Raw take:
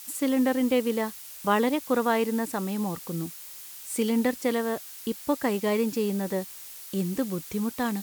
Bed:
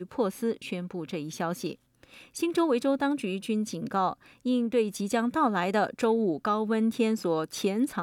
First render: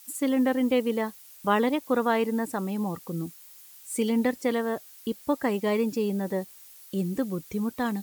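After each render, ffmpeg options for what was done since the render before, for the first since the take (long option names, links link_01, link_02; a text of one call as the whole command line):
ffmpeg -i in.wav -af "afftdn=noise_reduction=9:noise_floor=-43" out.wav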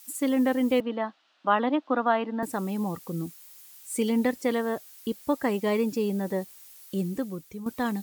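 ffmpeg -i in.wav -filter_complex "[0:a]asettb=1/sr,asplit=3[link_01][link_02][link_03];[link_01]atrim=end=0.804[link_04];[link_02]atrim=start=0.8:end=2.43,asetpts=PTS-STARTPTS,afade=type=in:duration=0.004:curve=qsin,afade=type=out:start_time=1.626:duration=0.004:curve=qsin,highpass=frequency=240:width=0.5412,highpass=frequency=240:width=1.3066,equalizer=frequency=300:width_type=q:width=4:gain=4,equalizer=frequency=430:width_type=q:width=4:gain=-9,equalizer=frequency=700:width_type=q:width=4:gain=5,equalizer=frequency=1300:width_type=q:width=4:gain=4,equalizer=frequency=2200:width_type=q:width=4:gain=-7,lowpass=frequency=3500:width=0.5412,lowpass=frequency=3500:width=1.3066[link_05];[link_03]atrim=start=2.426[link_06];[link_04][link_05]acrossfade=duration=0.004:curve1=hsin:curve2=qsin[link_07];[link_07][link_06]acrossfade=duration=0.004:curve1=qsin:curve2=hsin,asplit=2[link_08][link_09];[link_08]atrim=end=7.66,asetpts=PTS-STARTPTS,afade=type=out:start_time=6.96:duration=0.7:silence=0.281838[link_10];[link_09]atrim=start=7.66,asetpts=PTS-STARTPTS,afade=type=in:duration=0.004:curve=hsin:silence=0.281838[link_11];[link_10][link_11]concat=n=2:v=0:a=1" out.wav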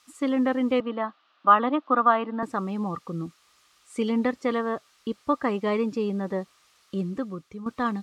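ffmpeg -i in.wav -af "lowpass=4500,equalizer=frequency=1200:width_type=o:width=0.24:gain=12.5" out.wav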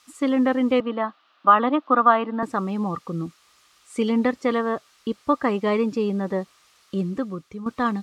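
ffmpeg -i in.wav -af "volume=3.5dB,alimiter=limit=-3dB:level=0:latency=1" out.wav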